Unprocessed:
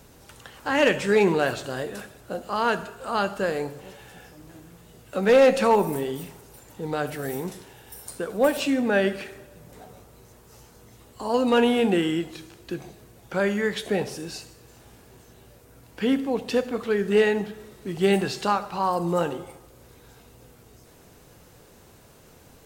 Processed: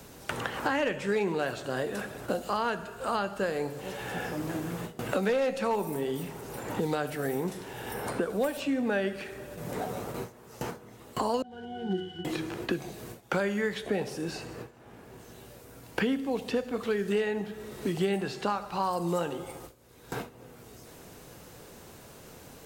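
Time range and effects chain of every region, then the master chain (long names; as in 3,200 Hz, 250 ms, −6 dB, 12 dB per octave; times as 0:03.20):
0:11.42–0:12.25: one scale factor per block 3 bits + resonances in every octave F#, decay 0.34 s
whole clip: noise gate with hold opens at −39 dBFS; multiband upward and downward compressor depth 100%; level −5.5 dB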